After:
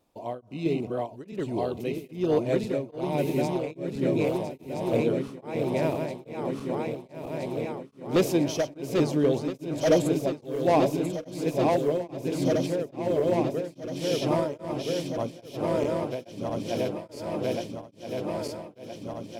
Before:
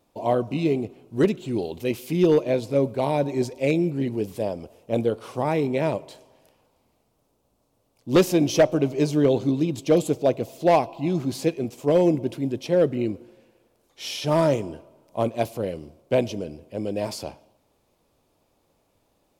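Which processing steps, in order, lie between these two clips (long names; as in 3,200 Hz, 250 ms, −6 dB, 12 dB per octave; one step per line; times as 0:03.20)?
feedback delay that plays each chunk backwards 660 ms, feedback 81%, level −3 dB
tremolo along a rectified sine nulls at 1.2 Hz
level −4 dB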